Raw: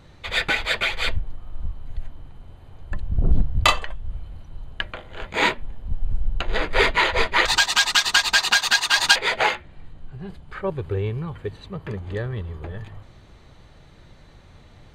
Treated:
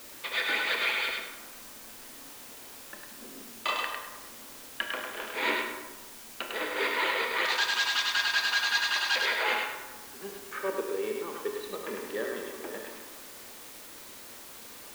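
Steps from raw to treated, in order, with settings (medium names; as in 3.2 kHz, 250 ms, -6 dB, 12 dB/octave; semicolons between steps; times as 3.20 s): low-pass 5.2 kHz 12 dB/octave; hum notches 60/120/180/240/300/360/420 Hz; reverse; compression 12:1, threshold -25 dBFS, peak gain reduction 16 dB; reverse; elliptic high-pass 230 Hz, stop band 40 dB; peaking EQ 720 Hz -6.5 dB 0.33 oct; thinning echo 102 ms, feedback 28%, high-pass 530 Hz, level -3.5 dB; word length cut 8-bit, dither triangular; on a send at -4.5 dB: reverberation RT60 1.3 s, pre-delay 18 ms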